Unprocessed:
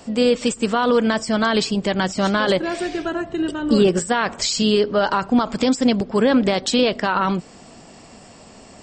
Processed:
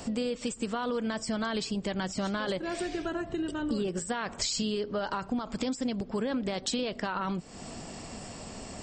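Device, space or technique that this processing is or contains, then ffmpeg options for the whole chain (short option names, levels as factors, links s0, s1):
ASMR close-microphone chain: -af "lowshelf=f=130:g=7,acompressor=threshold=0.0251:ratio=4,highshelf=f=7000:g=5"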